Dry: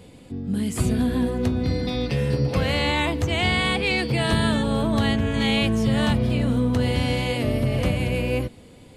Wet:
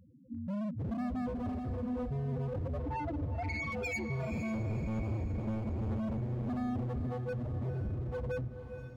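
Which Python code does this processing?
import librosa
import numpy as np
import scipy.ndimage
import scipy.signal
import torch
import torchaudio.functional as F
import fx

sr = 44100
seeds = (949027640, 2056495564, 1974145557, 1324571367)

p1 = fx.octave_divider(x, sr, octaves=1, level_db=2.0, at=(4.52, 5.97))
p2 = fx.peak_eq(p1, sr, hz=2000.0, db=-3.0, octaves=0.35)
p3 = np.sign(p2) * np.maximum(np.abs(p2) - 10.0 ** (-39.0 / 20.0), 0.0)
p4 = p2 + (p3 * librosa.db_to_amplitude(-9.0))
p5 = fx.spec_topn(p4, sr, count=2)
p6 = np.clip(p5, -10.0 ** (-29.0 / 20.0), 10.0 ** (-29.0 / 20.0))
p7 = fx.air_absorb(p6, sr, metres=98.0, at=(2.79, 3.72))
p8 = p7 + fx.echo_diffused(p7, sr, ms=486, feedback_pct=47, wet_db=-9.0, dry=0)
y = p8 * librosa.db_to_amplitude(-5.0)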